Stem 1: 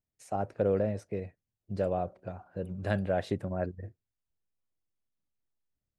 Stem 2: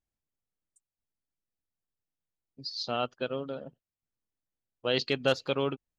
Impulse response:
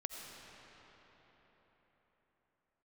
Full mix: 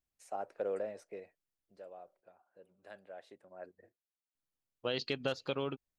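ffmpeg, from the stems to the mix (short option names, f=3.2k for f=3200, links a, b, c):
-filter_complex "[0:a]highpass=460,volume=4dB,afade=t=out:st=1.13:d=0.67:silence=0.237137,afade=t=in:st=3.44:d=0.4:silence=0.334965[a];[1:a]acompressor=threshold=-29dB:ratio=4,volume=-2.5dB,asplit=3[b][c][d];[b]atrim=end=2.21,asetpts=PTS-STARTPTS,afade=t=out:st=2.206:d=0.004:c=hsin[e];[c]atrim=start=2.21:end=4.35,asetpts=PTS-STARTPTS,volume=0[f];[d]atrim=start=4.35,asetpts=PTS-STARTPTS,afade=t=in:d=0.004:c=hsin[g];[e][f][g]concat=n=3:v=0:a=1[h];[a][h]amix=inputs=2:normalize=0"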